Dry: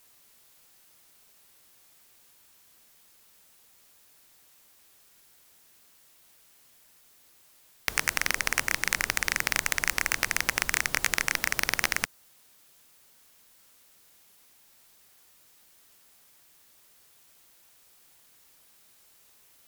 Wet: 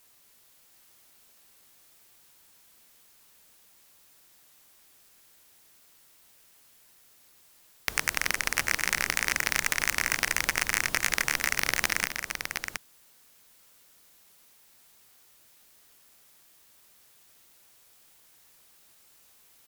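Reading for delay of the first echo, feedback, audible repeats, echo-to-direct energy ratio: 0.263 s, no steady repeat, 2, -5.0 dB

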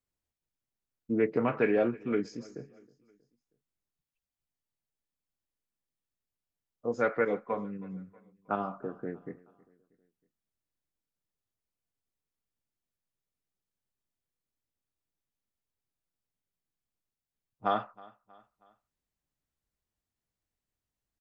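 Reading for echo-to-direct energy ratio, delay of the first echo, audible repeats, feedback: -22.0 dB, 0.318 s, 2, 47%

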